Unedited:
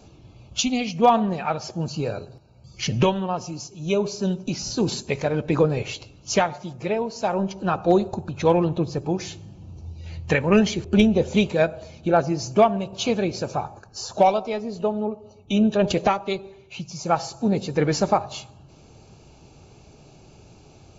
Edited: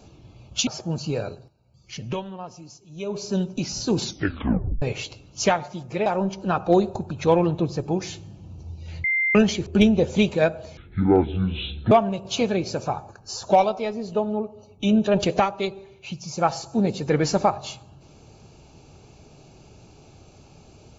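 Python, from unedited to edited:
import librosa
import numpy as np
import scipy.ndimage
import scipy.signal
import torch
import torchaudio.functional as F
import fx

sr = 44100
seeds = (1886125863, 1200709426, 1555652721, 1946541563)

y = fx.edit(x, sr, fx.cut(start_s=0.67, length_s=0.9),
    fx.fade_down_up(start_s=2.22, length_s=1.95, db=-10.0, fade_s=0.22),
    fx.tape_stop(start_s=4.92, length_s=0.8),
    fx.cut(start_s=6.96, length_s=0.28),
    fx.bleep(start_s=10.22, length_s=0.31, hz=2090.0, db=-19.0),
    fx.speed_span(start_s=11.95, length_s=0.64, speed=0.56), tone=tone)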